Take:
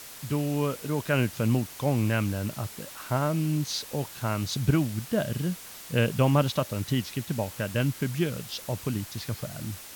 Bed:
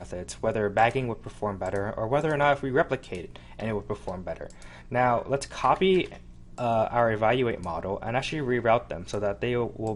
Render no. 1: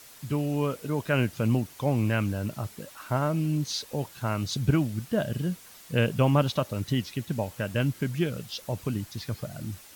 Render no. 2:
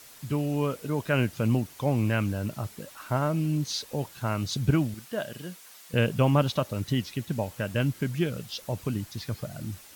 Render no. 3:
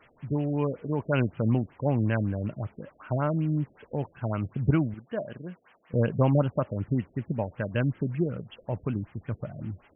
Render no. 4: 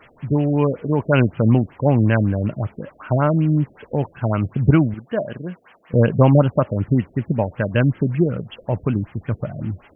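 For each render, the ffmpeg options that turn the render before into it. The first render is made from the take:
ffmpeg -i in.wav -af "afftdn=noise_reduction=7:noise_floor=-44" out.wav
ffmpeg -i in.wav -filter_complex "[0:a]asettb=1/sr,asplit=3[link_01][link_02][link_03];[link_01]atrim=end=4.944[link_04];[link_02]atrim=start=4.94:end=5.94,asetpts=PTS-STARTPTS,afade=type=in:duration=0.004:curve=qsin,afade=type=out:start_time=0.996:duration=0.004:curve=qsin,highpass=frequency=630:poles=1[link_05];[link_03]atrim=start=5.936[link_06];[link_04][link_05]acrossfade=duration=0.004:curve1=hsin:curve2=qsin[link_07];[link_07][link_06]acrossfade=duration=0.004:curve1=qsin:curve2=hsin" out.wav
ffmpeg -i in.wav -af "aexciter=amount=12.9:drive=8.2:freq=5200,afftfilt=real='re*lt(b*sr/1024,640*pow(3400/640,0.5+0.5*sin(2*PI*5.3*pts/sr)))':imag='im*lt(b*sr/1024,640*pow(3400/640,0.5+0.5*sin(2*PI*5.3*pts/sr)))':win_size=1024:overlap=0.75" out.wav
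ffmpeg -i in.wav -af "volume=9.5dB,alimiter=limit=-2dB:level=0:latency=1" out.wav

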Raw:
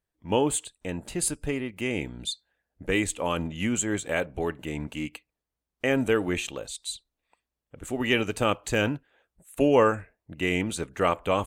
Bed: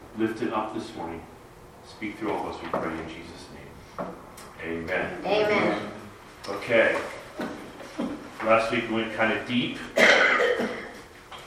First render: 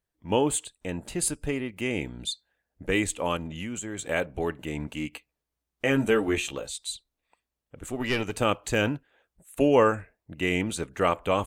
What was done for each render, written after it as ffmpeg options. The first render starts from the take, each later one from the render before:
ffmpeg -i in.wav -filter_complex "[0:a]asettb=1/sr,asplit=3[link_01][link_02][link_03];[link_01]atrim=end=3.364[link_04];[link_02]atrim=start=3.36:end=3.99,asetpts=PTS-STARTPTS,afade=type=in:duration=0.004:curve=qsin,afade=type=out:start_time=0.626:duration=0.004:curve=qsin,acompressor=threshold=-31dB:ratio=6:attack=3.2:release=140:knee=1:detection=peak[link_05];[link_03]atrim=start=3.986[link_06];[link_04][link_05]acrossfade=duration=0.004:curve1=hsin:curve2=qsin[link_07];[link_07][link_06]acrossfade=duration=0.004:curve1=qsin:curve2=hsin,asettb=1/sr,asplit=3[link_08][link_09][link_10];[link_08]atrim=end=5.114[link_11];[link_09]atrim=start=5.11:end=6.87,asetpts=PTS-STARTPTS,afade=type=in:duration=0.004:curve=qsin,afade=type=out:start_time=1.756:duration=0.004:curve=qsin,asplit=2[link_12][link_13];[link_13]adelay=14,volume=-4.5dB[link_14];[link_12][link_14]amix=inputs=2:normalize=0,atrim=end_sample=77616[link_15];[link_10]atrim=start=6.866[link_16];[link_11][link_15]acrossfade=duration=0.004:curve1=hsin:curve2=qsin[link_17];[link_17][link_16]acrossfade=duration=0.004:curve1=qsin:curve2=hsin,asettb=1/sr,asplit=3[link_18][link_19][link_20];[link_18]atrim=end=7.904[link_21];[link_19]atrim=start=7.9:end=8.31,asetpts=PTS-STARTPTS,afade=type=in:duration=0.004:curve=qsin,afade=type=out:start_time=0.406:duration=0.004:curve=qsin,aeval=exprs='(tanh(7.08*val(0)+0.5)-tanh(0.5))/7.08':channel_layout=same[link_22];[link_20]atrim=start=8.306[link_23];[link_21][link_22]acrossfade=duration=0.004:curve1=hsin:curve2=qsin[link_24];[link_24][link_23]acrossfade=duration=0.004:curve1=qsin:curve2=hsin" out.wav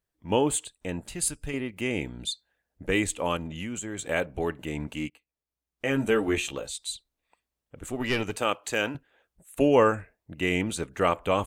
ffmpeg -i in.wav -filter_complex "[0:a]asettb=1/sr,asplit=3[link_01][link_02][link_03];[link_01]atrim=end=1.014[link_04];[link_02]atrim=start=1.01:end=1.54,asetpts=PTS-STARTPTS,afade=type=in:duration=0.004:curve=qsin,afade=type=out:start_time=0.526:duration=0.004:curve=qsin,equalizer=frequency=440:width=0.42:gain=-8[link_05];[link_03]atrim=start=1.536[link_06];[link_04][link_05]acrossfade=duration=0.004:curve1=hsin:curve2=qsin[link_07];[link_07][link_06]acrossfade=duration=0.004:curve1=qsin:curve2=hsin,asettb=1/sr,asplit=3[link_08][link_09][link_10];[link_08]atrim=end=8.364[link_11];[link_09]atrim=start=8.36:end=8.95,asetpts=PTS-STARTPTS,afade=type=in:duration=0.004:curve=qsin,afade=type=out:start_time=0.586:duration=0.004:curve=qsin,highpass=frequency=490:poles=1[link_12];[link_10]atrim=start=8.946[link_13];[link_11][link_12]acrossfade=duration=0.004:curve1=hsin:curve2=qsin[link_14];[link_14][link_13]acrossfade=duration=0.004:curve1=qsin:curve2=hsin,asplit=2[link_15][link_16];[link_15]atrim=end=5.1,asetpts=PTS-STARTPTS,afade=type=out:start_time=5.096:duration=0.004:curve=hsin:silence=0.1[link_17];[link_16]atrim=start=5.1,asetpts=PTS-STARTPTS,afade=type=in:duration=1.17:silence=0.1[link_18];[link_17][link_18]concat=n=2:v=0:a=1" out.wav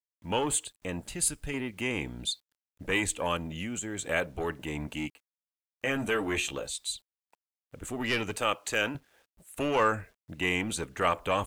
ffmpeg -i in.wav -filter_complex "[0:a]acrusher=bits=10:mix=0:aa=0.000001,acrossover=split=770|2800[link_01][link_02][link_03];[link_01]asoftclip=type=tanh:threshold=-29dB[link_04];[link_04][link_02][link_03]amix=inputs=3:normalize=0" out.wav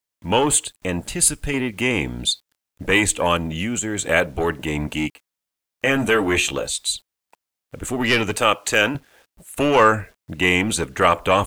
ffmpeg -i in.wav -af "volume=11dB,alimiter=limit=-2dB:level=0:latency=1" out.wav

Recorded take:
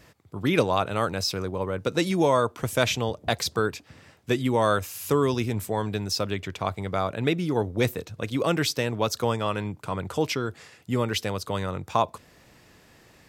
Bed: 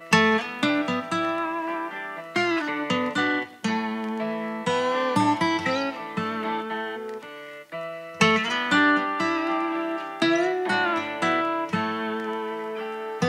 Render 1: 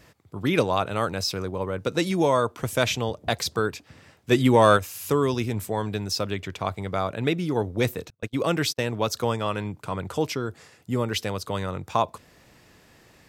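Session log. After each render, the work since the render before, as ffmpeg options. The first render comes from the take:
ffmpeg -i in.wav -filter_complex "[0:a]asplit=3[link_01][link_02][link_03];[link_01]afade=type=out:start_time=4.31:duration=0.02[link_04];[link_02]acontrast=60,afade=type=in:start_time=4.31:duration=0.02,afade=type=out:start_time=4.76:duration=0.02[link_05];[link_03]afade=type=in:start_time=4.76:duration=0.02[link_06];[link_04][link_05][link_06]amix=inputs=3:normalize=0,asettb=1/sr,asplit=3[link_07][link_08][link_09];[link_07]atrim=end=8.104[link_10];[link_08]atrim=start=8.1:end=8.8,asetpts=PTS-STARTPTS,afade=type=in:duration=0.004:curve=qsin,afade=type=out:start_time=0.696:duration=0.004:curve=qsin,agate=range=-33dB:threshold=-31dB:ratio=16:release=100:detection=peak[link_11];[link_09]atrim=start=8.796[link_12];[link_10][link_11]acrossfade=duration=0.004:curve1=hsin:curve2=qsin[link_13];[link_13][link_12]acrossfade=duration=0.004:curve1=qsin:curve2=hsin,asettb=1/sr,asplit=3[link_14][link_15][link_16];[link_14]atrim=end=10.244[link_17];[link_15]atrim=start=10.24:end=11.12,asetpts=PTS-STARTPTS,afade=type=in:duration=0.004:curve=qsin,afade=type=out:start_time=0.876:duration=0.004:curve=qsin,equalizer=frequency=2700:width=0.77:gain=-4.5[link_18];[link_16]atrim=start=11.116[link_19];[link_17][link_18]acrossfade=duration=0.004:curve1=hsin:curve2=qsin[link_20];[link_20][link_19]acrossfade=duration=0.004:curve1=qsin:curve2=hsin" out.wav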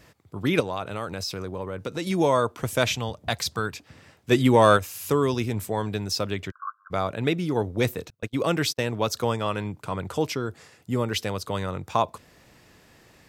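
ffmpeg -i in.wav -filter_complex "[0:a]asettb=1/sr,asplit=3[link_01][link_02][link_03];[link_01]atrim=end=0.604[link_04];[link_02]atrim=start=0.6:end=2.07,asetpts=PTS-STARTPTS,afade=type=in:duration=0.004:curve=qsin,afade=type=out:start_time=1.466:duration=0.004:curve=qsin,acompressor=threshold=-30dB:ratio=2:attack=3.2:release=140:knee=1:detection=peak[link_05];[link_03]atrim=start=2.066[link_06];[link_04][link_05]acrossfade=duration=0.004:curve1=hsin:curve2=qsin[link_07];[link_07][link_06]acrossfade=duration=0.004:curve1=qsin:curve2=hsin,asettb=1/sr,asplit=3[link_08][link_09][link_10];[link_08]atrim=end=2.934[link_11];[link_09]atrim=start=2.93:end=3.75,asetpts=PTS-STARTPTS,afade=type=in:duration=0.004:curve=qsin,afade=type=out:start_time=0.816:duration=0.004:curve=qsin,equalizer=frequency=400:width_type=o:width=1.3:gain=-7[link_12];[link_10]atrim=start=3.746[link_13];[link_11][link_12]acrossfade=duration=0.004:curve1=hsin:curve2=qsin[link_14];[link_14][link_13]acrossfade=duration=0.004:curve1=qsin:curve2=hsin,asplit=3[link_15][link_16][link_17];[link_15]afade=type=out:start_time=6.5:duration=0.02[link_18];[link_16]asuperpass=centerf=1300:order=20:qfactor=2.4,afade=type=in:start_time=6.5:duration=0.02,afade=type=out:start_time=6.9:duration=0.02[link_19];[link_17]afade=type=in:start_time=6.9:duration=0.02[link_20];[link_18][link_19][link_20]amix=inputs=3:normalize=0" out.wav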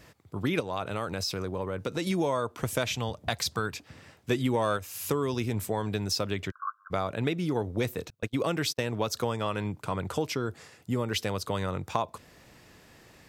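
ffmpeg -i in.wav -af "acompressor=threshold=-25dB:ratio=4" out.wav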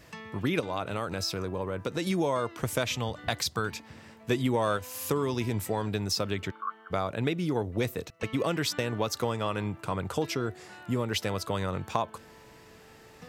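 ffmpeg -i in.wav -i bed.wav -filter_complex "[1:a]volume=-25.5dB[link_01];[0:a][link_01]amix=inputs=2:normalize=0" out.wav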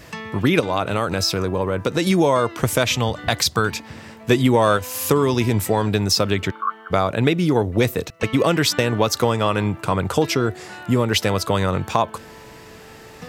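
ffmpeg -i in.wav -af "volume=11dB,alimiter=limit=-2dB:level=0:latency=1" out.wav

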